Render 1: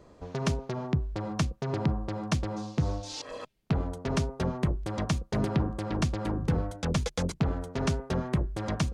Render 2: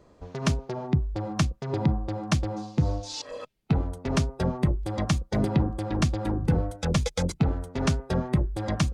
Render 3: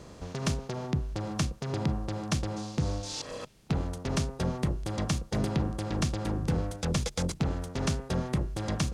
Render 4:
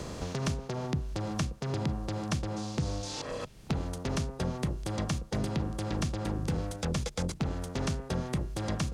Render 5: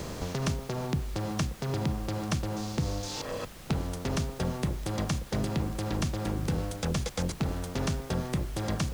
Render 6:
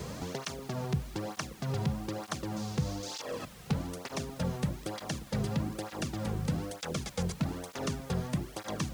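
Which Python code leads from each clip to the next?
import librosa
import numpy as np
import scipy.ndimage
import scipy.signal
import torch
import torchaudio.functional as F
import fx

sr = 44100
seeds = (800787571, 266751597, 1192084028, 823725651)

y1 = fx.noise_reduce_blind(x, sr, reduce_db=6)
y1 = y1 * 10.0 ** (4.0 / 20.0)
y2 = fx.bin_compress(y1, sr, power=0.6)
y2 = fx.high_shelf(y2, sr, hz=4700.0, db=7.0)
y2 = y2 * 10.0 ** (-7.5 / 20.0)
y3 = fx.band_squash(y2, sr, depth_pct=70)
y3 = y3 * 10.0 ** (-2.5 / 20.0)
y4 = fx.dmg_noise_colour(y3, sr, seeds[0], colour='pink', level_db=-50.0)
y4 = y4 * 10.0 ** (1.5 / 20.0)
y5 = fx.flanger_cancel(y4, sr, hz=1.1, depth_ms=3.7)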